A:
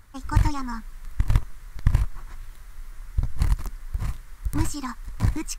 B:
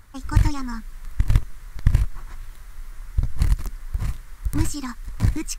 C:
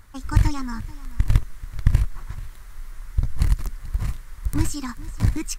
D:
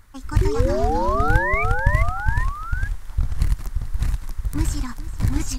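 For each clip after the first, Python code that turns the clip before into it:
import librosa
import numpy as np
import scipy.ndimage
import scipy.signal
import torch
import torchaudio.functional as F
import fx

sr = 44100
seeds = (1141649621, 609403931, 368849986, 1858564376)

y1 = fx.dynamic_eq(x, sr, hz=940.0, q=1.3, threshold_db=-47.0, ratio=4.0, max_db=-6)
y1 = y1 * 10.0 ** (2.5 / 20.0)
y2 = y1 + 10.0 ** (-18.5 / 20.0) * np.pad(y1, (int(435 * sr / 1000.0), 0))[:len(y1)]
y3 = fx.spec_paint(y2, sr, seeds[0], shape='rise', start_s=0.41, length_s=1.23, low_hz=360.0, high_hz=2400.0, level_db=-23.0)
y3 = fx.echo_pitch(y3, sr, ms=188, semitones=-2, count=3, db_per_echo=-3.0)
y3 = y3 * 10.0 ** (-1.5 / 20.0)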